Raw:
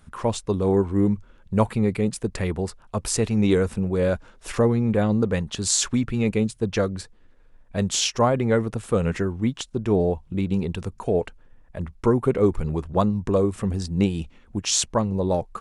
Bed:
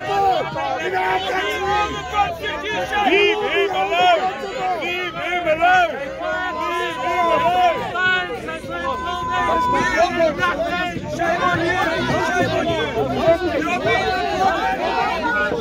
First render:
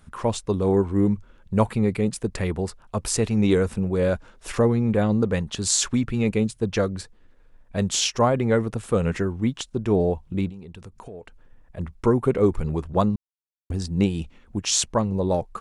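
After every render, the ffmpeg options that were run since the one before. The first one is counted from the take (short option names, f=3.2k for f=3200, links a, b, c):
-filter_complex "[0:a]asettb=1/sr,asplit=3[a][b][c];[a]atrim=end=10.494[d];[b]atrim=start=10.49:end=11.78,asetpts=PTS-STARTPTS,afade=t=in:d=0.004:c=qsin,afade=t=out:st=1.286:d=0.004:c=qsin,acompressor=threshold=-39dB:ratio=4:attack=3.2:release=140:knee=1:detection=peak[e];[c]atrim=start=11.776[f];[d][e]acrossfade=d=0.004:c1=hsin:c2=qsin[g];[g][f]acrossfade=d=0.004:c1=qsin:c2=hsin,asplit=3[h][i][j];[h]atrim=end=13.16,asetpts=PTS-STARTPTS,afade=t=out:st=13.156:d=0.004:c=hsin[k];[i]atrim=start=13.16:end=13.7,asetpts=PTS-STARTPTS,volume=0[l];[j]atrim=start=13.7,asetpts=PTS-STARTPTS,afade=t=in:d=0.004:c=hsin[m];[k][l][m]concat=n=3:v=0:a=1"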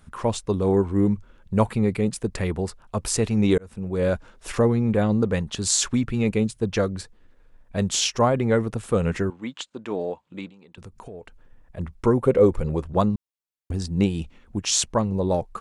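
-filter_complex "[0:a]asettb=1/sr,asplit=3[a][b][c];[a]atrim=end=9.304[d];[b]atrim=start=9.3:end=10.78,asetpts=PTS-STARTPTS,afade=t=in:d=0.004:c=qsin,afade=t=out:st=1.476:d=0.004:c=qsin,highpass=370,equalizer=f=390:t=q:w=4:g=-8,equalizer=f=710:t=q:w=4:g=-5,equalizer=f=5.6k:t=q:w=4:g=-8,lowpass=f=7.5k:w=0.5412,lowpass=f=7.5k:w=1.3066[e];[c]atrim=start=10.776[f];[d][e]acrossfade=d=0.004:c1=hsin:c2=qsin[g];[g][f]acrossfade=d=0.004:c1=qsin:c2=hsin,asettb=1/sr,asplit=3[h][i][j];[h]atrim=end=12.174[k];[i]atrim=start=12.17:end=12.83,asetpts=PTS-STARTPTS,afade=t=in:d=0.004:c=qsin,afade=t=out:st=0.656:d=0.004:c=qsin,equalizer=f=520:t=o:w=0.27:g=10.5[l];[j]atrim=start=12.826[m];[k][l]acrossfade=d=0.004:c1=hsin:c2=qsin[n];[n][m]acrossfade=d=0.004:c1=qsin:c2=hsin,asplit=2[o][p];[o]atrim=end=3.58,asetpts=PTS-STARTPTS,afade=t=out:st=3.576:d=0.004:c=hsin[q];[p]atrim=start=3.58,asetpts=PTS-STARTPTS,afade=t=in:d=0.5[r];[q][r]concat=n=2:v=0:a=1"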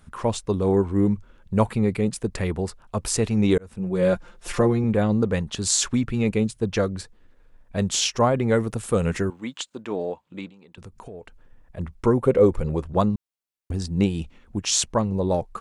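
-filter_complex "[0:a]asettb=1/sr,asplit=3[a][b][c];[a]atrim=end=3.794[d];[b]atrim=start=3.79:end=4.84,asetpts=PTS-STARTPTS,afade=t=in:d=0.004:c=qsin,afade=t=out:st=1.046:d=0.004:c=qsin,aecho=1:1:5.7:0.65,atrim=end_sample=46305[e];[c]atrim=start=4.836[f];[d][e]acrossfade=d=0.004:c1=hsin:c2=qsin[g];[g][f]acrossfade=d=0.004:c1=qsin:c2=hsin,asettb=1/sr,asplit=3[h][i][j];[h]atrim=end=8.484[k];[i]atrim=start=8.48:end=9.82,asetpts=PTS-STARTPTS,afade=t=in:d=0.004:c=qsin,afade=t=out:st=1.336:d=0.004:c=qsin,highshelf=f=6.9k:g=10[l];[j]atrim=start=9.816[m];[k][l]acrossfade=d=0.004:c1=hsin:c2=qsin[n];[n][m]acrossfade=d=0.004:c1=qsin:c2=hsin"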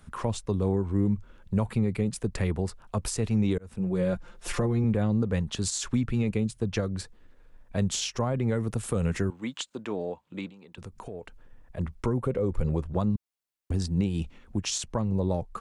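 -filter_complex "[0:a]alimiter=limit=-13dB:level=0:latency=1:release=115,acrossover=split=190[a][b];[b]acompressor=threshold=-33dB:ratio=2[c];[a][c]amix=inputs=2:normalize=0"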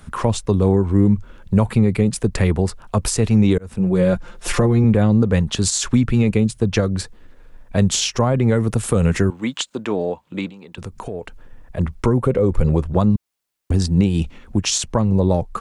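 -af "volume=10.5dB"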